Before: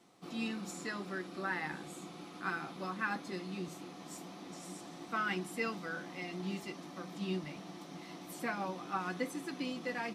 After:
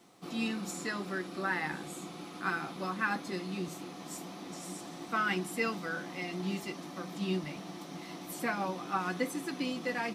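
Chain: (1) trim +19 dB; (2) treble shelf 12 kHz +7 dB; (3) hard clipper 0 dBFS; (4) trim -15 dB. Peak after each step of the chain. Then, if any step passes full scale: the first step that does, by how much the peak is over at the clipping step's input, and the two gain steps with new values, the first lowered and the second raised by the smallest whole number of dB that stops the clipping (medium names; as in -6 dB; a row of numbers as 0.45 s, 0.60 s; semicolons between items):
-3.0 dBFS, -3.0 dBFS, -3.0 dBFS, -18.0 dBFS; nothing clips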